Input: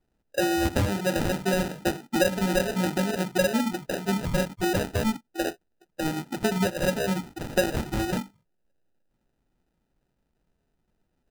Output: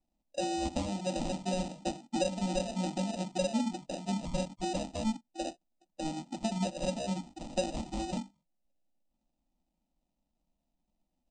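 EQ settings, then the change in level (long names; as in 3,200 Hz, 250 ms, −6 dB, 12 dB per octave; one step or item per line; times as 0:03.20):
Butterworth low-pass 8,800 Hz 96 dB per octave
phaser with its sweep stopped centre 420 Hz, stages 6
−5.0 dB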